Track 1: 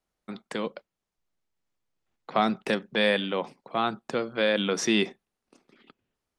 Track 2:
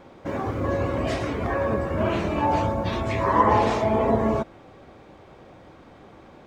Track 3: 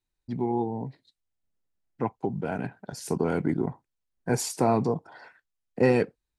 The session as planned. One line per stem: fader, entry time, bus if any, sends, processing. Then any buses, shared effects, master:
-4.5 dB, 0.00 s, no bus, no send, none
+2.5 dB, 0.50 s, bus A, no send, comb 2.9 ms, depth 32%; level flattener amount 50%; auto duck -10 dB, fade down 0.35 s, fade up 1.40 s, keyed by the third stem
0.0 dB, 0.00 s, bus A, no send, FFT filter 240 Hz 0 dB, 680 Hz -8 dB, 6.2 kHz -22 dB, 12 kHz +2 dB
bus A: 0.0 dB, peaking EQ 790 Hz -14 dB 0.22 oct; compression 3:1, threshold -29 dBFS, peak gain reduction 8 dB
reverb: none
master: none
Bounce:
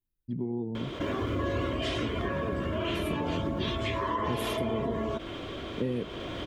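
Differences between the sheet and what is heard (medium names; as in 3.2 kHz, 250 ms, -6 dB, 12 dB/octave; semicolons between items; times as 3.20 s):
stem 1: muted; stem 2: entry 0.50 s -> 0.75 s; master: extra peaking EQ 3.2 kHz +13.5 dB 0.43 oct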